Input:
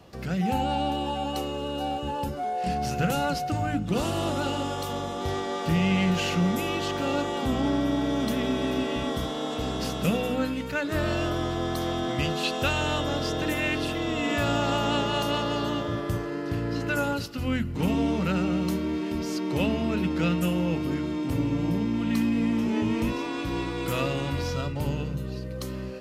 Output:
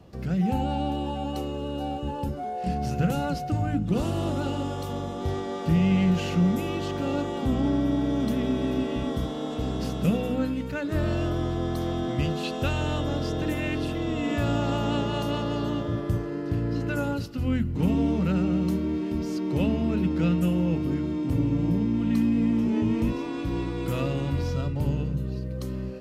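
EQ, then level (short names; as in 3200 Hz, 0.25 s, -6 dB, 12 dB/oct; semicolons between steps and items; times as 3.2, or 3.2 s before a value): low shelf 480 Hz +10.5 dB; -6.5 dB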